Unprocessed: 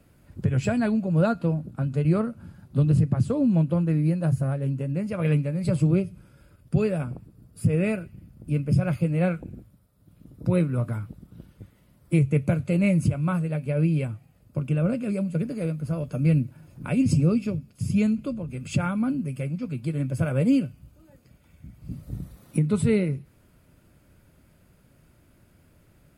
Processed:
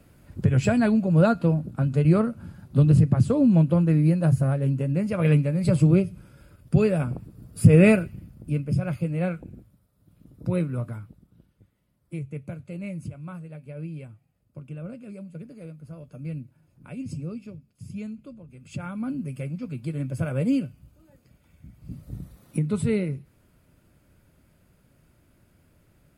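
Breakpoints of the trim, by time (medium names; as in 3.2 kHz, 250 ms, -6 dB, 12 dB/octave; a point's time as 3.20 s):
6.95 s +3 dB
7.89 s +9.5 dB
8.68 s -3 dB
10.75 s -3 dB
11.49 s -13 dB
18.58 s -13 dB
19.20 s -2.5 dB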